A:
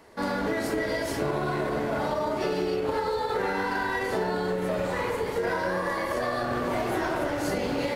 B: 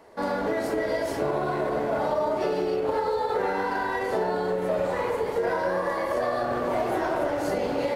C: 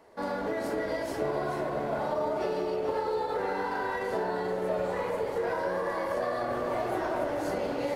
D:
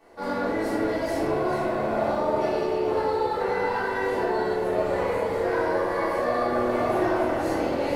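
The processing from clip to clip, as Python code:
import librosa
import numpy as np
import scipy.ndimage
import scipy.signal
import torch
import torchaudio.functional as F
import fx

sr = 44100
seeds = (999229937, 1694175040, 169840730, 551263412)

y1 = fx.peak_eq(x, sr, hz=630.0, db=8.0, octaves=1.8)
y1 = y1 * 10.0 ** (-4.0 / 20.0)
y2 = y1 + 10.0 ** (-8.0 / 20.0) * np.pad(y1, (int(436 * sr / 1000.0), 0))[:len(y1)]
y2 = y2 * 10.0 ** (-5.0 / 20.0)
y3 = fx.room_shoebox(y2, sr, seeds[0], volume_m3=310.0, walls='mixed', distance_m=3.5)
y3 = y3 * 10.0 ** (-4.0 / 20.0)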